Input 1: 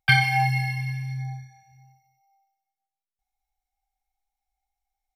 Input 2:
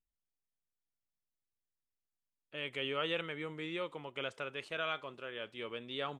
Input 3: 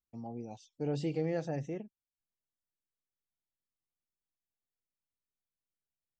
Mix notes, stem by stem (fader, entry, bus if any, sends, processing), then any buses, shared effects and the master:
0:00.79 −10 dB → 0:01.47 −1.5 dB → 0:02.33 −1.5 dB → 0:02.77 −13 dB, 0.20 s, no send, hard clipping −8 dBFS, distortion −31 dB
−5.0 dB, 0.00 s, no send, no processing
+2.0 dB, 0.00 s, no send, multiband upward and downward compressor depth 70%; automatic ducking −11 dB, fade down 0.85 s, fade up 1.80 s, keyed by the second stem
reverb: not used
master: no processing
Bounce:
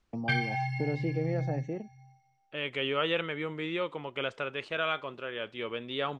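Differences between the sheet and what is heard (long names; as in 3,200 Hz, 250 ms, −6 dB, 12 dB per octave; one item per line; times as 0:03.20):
stem 2 −5.0 dB → +7.0 dB
master: extra high-frequency loss of the air 100 metres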